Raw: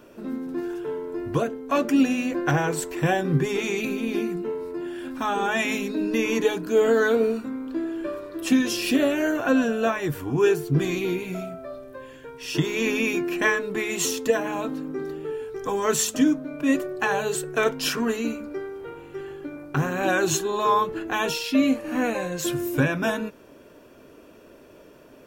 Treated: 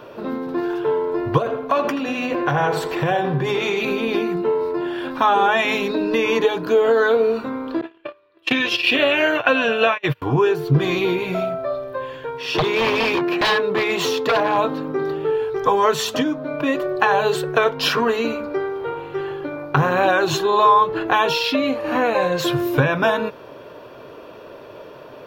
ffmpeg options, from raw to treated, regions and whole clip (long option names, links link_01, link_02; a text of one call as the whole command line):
ffmpeg -i in.wav -filter_complex "[0:a]asettb=1/sr,asplit=3[link_01][link_02][link_03];[link_01]atrim=end=1.384[link_04];[link_02]atrim=start=1.38:end=3.88,asetpts=PTS-STARTPTS,afade=type=in:duration=0.004:curve=qsin,afade=type=out:start_time=2.496:duration=0.004:curve=qsin,bandreject=frequency=107.2:width_type=h:width=4,bandreject=frequency=214.4:width_type=h:width=4,bandreject=frequency=321.6:width_type=h:width=4,bandreject=frequency=428.8:width_type=h:width=4,bandreject=frequency=536:width_type=h:width=4,bandreject=frequency=643.2:width_type=h:width=4,bandreject=frequency=750.4:width_type=h:width=4,bandreject=frequency=857.6:width_type=h:width=4,bandreject=frequency=964.8:width_type=h:width=4,bandreject=frequency=1072:width_type=h:width=4,bandreject=frequency=1179.2:width_type=h:width=4,bandreject=frequency=1286.4:width_type=h:width=4,bandreject=frequency=1393.6:width_type=h:width=4,bandreject=frequency=1500.8:width_type=h:width=4,bandreject=frequency=1608:width_type=h:width=4,bandreject=frequency=1715.2:width_type=h:width=4,bandreject=frequency=1822.4:width_type=h:width=4,bandreject=frequency=1929.6:width_type=h:width=4,bandreject=frequency=2036.8:width_type=h:width=4,bandreject=frequency=2144:width_type=h:width=4,bandreject=frequency=2251.2:width_type=h:width=4,bandreject=frequency=2358.4:width_type=h:width=4,bandreject=frequency=2465.6:width_type=h:width=4,bandreject=frequency=2572.8:width_type=h:width=4,bandreject=frequency=2680:width_type=h:width=4,bandreject=frequency=2787.2:width_type=h:width=4,bandreject=frequency=2894.4:width_type=h:width=4,bandreject=frequency=3001.6:width_type=h:width=4,bandreject=frequency=3108.8:width_type=h:width=4,bandreject=frequency=3216:width_type=h:width=4,bandreject=frequency=3323.2:width_type=h:width=4,acompressor=threshold=-26dB:ratio=5:attack=3.2:release=140:knee=1:detection=peak,asplit=2[link_05][link_06];[link_06]adelay=81,lowpass=frequency=3200:poles=1,volume=-9dB,asplit=2[link_07][link_08];[link_08]adelay=81,lowpass=frequency=3200:poles=1,volume=0.47,asplit=2[link_09][link_10];[link_10]adelay=81,lowpass=frequency=3200:poles=1,volume=0.47,asplit=2[link_11][link_12];[link_12]adelay=81,lowpass=frequency=3200:poles=1,volume=0.47,asplit=2[link_13][link_14];[link_14]adelay=81,lowpass=frequency=3200:poles=1,volume=0.47[link_15];[link_05][link_07][link_09][link_11][link_13][link_15]amix=inputs=6:normalize=0,atrim=end_sample=110250[link_16];[link_03]atrim=start=3.876[link_17];[link_04][link_16]acrossfade=duration=0.004:curve1=hsin:curve2=qsin[link_18];[link_18][link_17]acrossfade=duration=0.004:curve1=qsin:curve2=hsin,asettb=1/sr,asplit=3[link_19][link_20][link_21];[link_19]atrim=end=7.814[link_22];[link_20]atrim=start=7.81:end=10.22,asetpts=PTS-STARTPTS,afade=type=in:duration=0.004:curve=qsin,afade=type=out:start_time=2.406:duration=0.004:curve=qsin,agate=range=-35dB:threshold=-27dB:ratio=16:release=100:detection=peak,equalizer=frequency=2600:width_type=o:width=1.1:gain=14[link_23];[link_21]atrim=start=10.216[link_24];[link_22][link_23]acrossfade=duration=0.004:curve1=hsin:curve2=qsin[link_25];[link_25][link_24]acrossfade=duration=0.004:curve1=qsin:curve2=hsin,asettb=1/sr,asplit=3[link_26][link_27][link_28];[link_26]atrim=end=12.414[link_29];[link_27]atrim=start=12.41:end=14.58,asetpts=PTS-STARTPTS,afade=type=in:duration=0.004:curve=qsin,afade=type=out:start_time=2.166:duration=0.004:curve=qsin,highpass=frequency=110:width=0.5412,highpass=frequency=110:width=1.3066,highshelf=frequency=4600:gain=-5.5,aeval=exprs='0.0841*(abs(mod(val(0)/0.0841+3,4)-2)-1)':channel_layout=same[link_30];[link_28]atrim=start=14.576[link_31];[link_29][link_30]acrossfade=duration=0.004:curve1=hsin:curve2=qsin[link_32];[link_32][link_31]acrossfade=duration=0.004:curve1=qsin:curve2=hsin,bass=frequency=250:gain=-7,treble=frequency=4000:gain=-4,acompressor=threshold=-26dB:ratio=4,equalizer=frequency=125:width_type=o:width=1:gain=12,equalizer=frequency=250:width_type=o:width=1:gain=-4,equalizer=frequency=500:width_type=o:width=1:gain=5,equalizer=frequency=1000:width_type=o:width=1:gain=8,equalizer=frequency=4000:width_type=o:width=1:gain=9,equalizer=frequency=8000:width_type=o:width=1:gain=-10,volume=6.5dB" out.wav